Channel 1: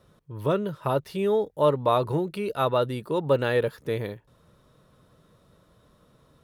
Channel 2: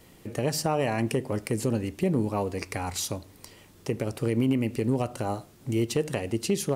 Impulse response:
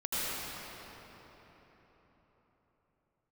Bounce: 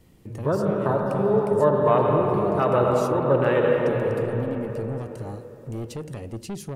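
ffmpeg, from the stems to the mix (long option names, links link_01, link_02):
-filter_complex "[0:a]afwtdn=0.0282,volume=-2.5dB,asplit=3[link_01][link_02][link_03];[link_02]volume=-4dB[link_04];[1:a]lowshelf=frequency=320:gain=11.5,asoftclip=type=tanh:threshold=-19dB,volume=-8.5dB[link_05];[link_03]apad=whole_len=298046[link_06];[link_05][link_06]sidechaincompress=threshold=-27dB:ratio=8:attack=5.8:release=467[link_07];[2:a]atrim=start_sample=2205[link_08];[link_04][link_08]afir=irnorm=-1:irlink=0[link_09];[link_01][link_07][link_09]amix=inputs=3:normalize=0"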